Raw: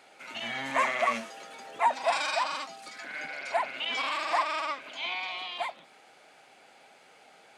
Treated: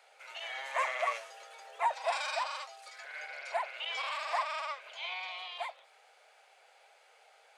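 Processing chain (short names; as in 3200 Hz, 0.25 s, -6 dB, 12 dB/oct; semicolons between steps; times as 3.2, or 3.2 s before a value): steep high-pass 450 Hz 48 dB/oct; gain -5.5 dB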